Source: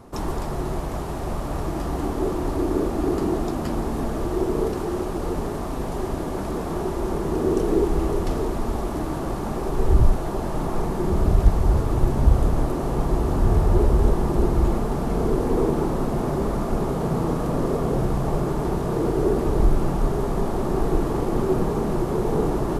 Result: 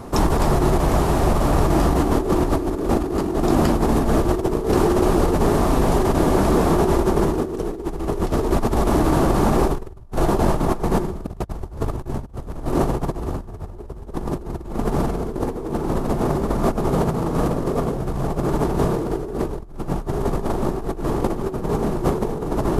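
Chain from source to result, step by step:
compressor whose output falls as the input rises −26 dBFS, ratio −0.5
level +6 dB

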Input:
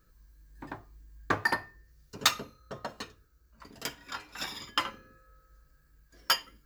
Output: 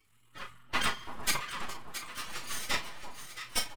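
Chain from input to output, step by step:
spectral magnitudes quantised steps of 30 dB
Butterworth low-pass 7,200 Hz
low shelf with overshoot 430 Hz −10 dB, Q 3
transient designer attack −12 dB, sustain +6 dB
change of speed 1.77×
spring reverb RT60 1.7 s, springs 43 ms, chirp 60 ms, DRR 16.5 dB
half-wave rectification
on a send: delay that swaps between a low-pass and a high-pass 336 ms, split 1,000 Hz, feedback 71%, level −7 dB
on the sum: phase-vocoder pitch shift with formants kept +5 semitones
double-tracking delay 36 ms −10 dB
level +6 dB

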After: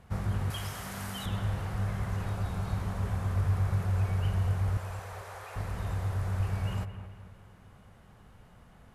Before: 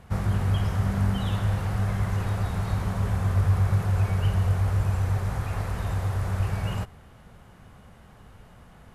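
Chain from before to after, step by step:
0:00.50–0:01.26: spectral tilt +3.5 dB per octave
0:02.31–0:02.73: notch filter 1,900 Hz, Q 9.2
0:04.77–0:05.56: Butterworth high-pass 420 Hz
on a send: bucket-brigade delay 221 ms, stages 4,096, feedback 49%, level −11.5 dB
on the sum: level −6 dB

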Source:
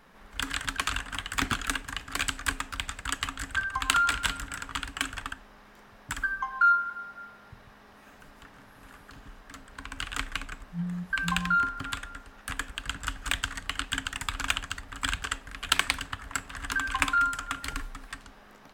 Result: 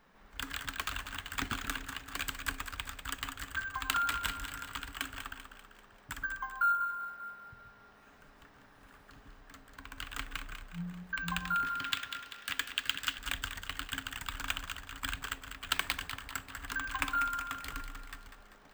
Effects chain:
0:11.66–0:13.18: meter weighting curve D
on a send: echo with a time of its own for lows and highs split 790 Hz, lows 127 ms, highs 195 ms, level −9 dB
on the sum: bad sample-rate conversion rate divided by 2×, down filtered, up hold
level −7.5 dB

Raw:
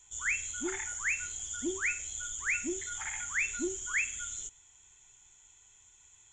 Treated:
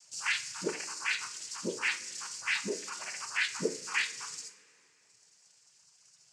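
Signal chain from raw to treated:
reverb reduction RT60 1.7 s
cochlear-implant simulation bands 8
coupled-rooms reverb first 0.38 s, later 2.8 s, from −21 dB, DRR 7 dB

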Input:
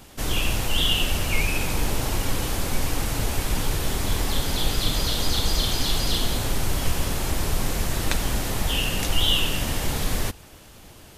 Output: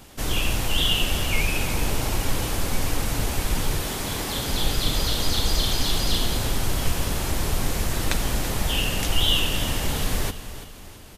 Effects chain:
0:03.81–0:04.48: high-pass filter 230 Hz → 97 Hz 6 dB per octave
repeating echo 334 ms, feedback 44%, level −13 dB

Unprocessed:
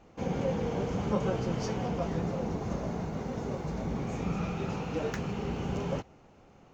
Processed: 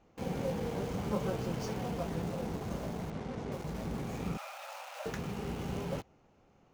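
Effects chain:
in parallel at −5.5 dB: bit reduction 6 bits
0:03.10–0:03.52: on the sum: high-frequency loss of the air 83 metres
0:04.37–0:05.06: linear-phase brick-wall high-pass 520 Hz
level −8 dB

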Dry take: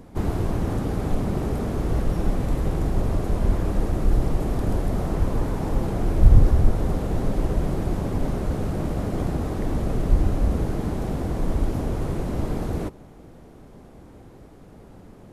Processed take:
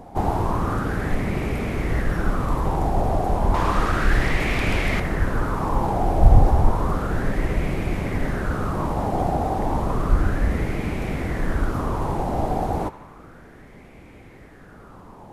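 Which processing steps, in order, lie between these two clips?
0:03.54–0:05.00: parametric band 3,100 Hz +11.5 dB 2.8 octaves
on a send: feedback echo with a band-pass in the loop 76 ms, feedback 79%, band-pass 2,100 Hz, level −13.5 dB
on the sum: auto-filter bell 0.32 Hz 760–2,300 Hz +16 dB

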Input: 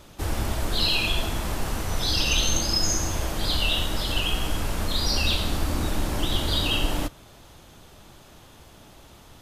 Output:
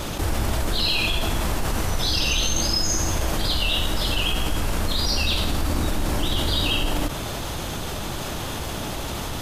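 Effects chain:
envelope flattener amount 70%
level −1.5 dB

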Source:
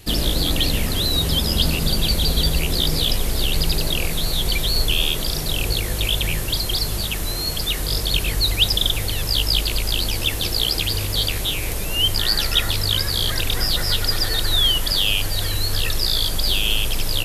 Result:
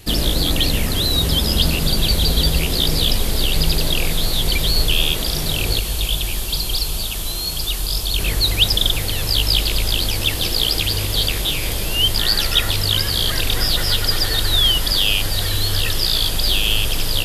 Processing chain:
0:05.79–0:08.19: octave-band graphic EQ 125/250/500/2,000 Hz −10/−5/−7/−10 dB
feedback delay with all-pass diffusion 1,082 ms, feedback 69%, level −13 dB
level +2 dB

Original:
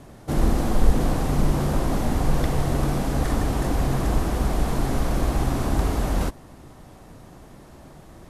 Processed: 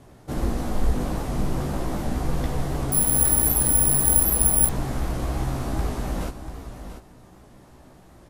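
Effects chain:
double-tracking delay 16 ms −5 dB
on a send: single-tap delay 689 ms −10.5 dB
0:02.92–0:04.69: on the sum: bad sample-rate conversion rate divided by 4×, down none, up zero stuff
wow of a warped record 78 rpm, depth 100 cents
level −5.5 dB

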